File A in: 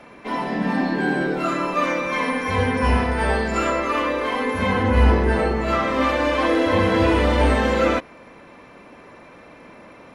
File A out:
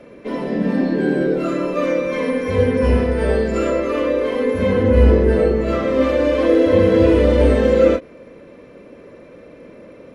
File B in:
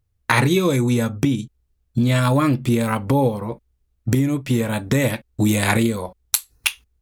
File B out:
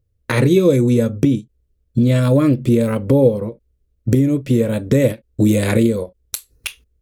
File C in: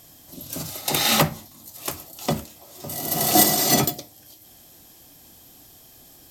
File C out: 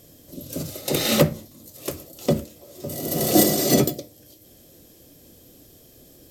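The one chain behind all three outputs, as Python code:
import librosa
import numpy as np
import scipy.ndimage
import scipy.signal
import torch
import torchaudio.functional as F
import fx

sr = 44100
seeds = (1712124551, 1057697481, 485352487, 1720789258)

y = fx.low_shelf_res(x, sr, hz=650.0, db=6.5, q=3.0)
y = fx.end_taper(y, sr, db_per_s=340.0)
y = y * 10.0 ** (-3.5 / 20.0)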